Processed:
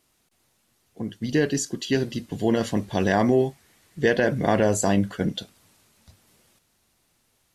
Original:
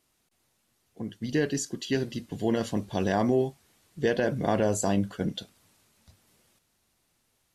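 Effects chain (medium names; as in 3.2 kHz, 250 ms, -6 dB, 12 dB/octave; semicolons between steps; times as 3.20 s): 2.62–5.28 s: peaking EQ 1.9 kHz +5.5 dB 0.49 oct; trim +4.5 dB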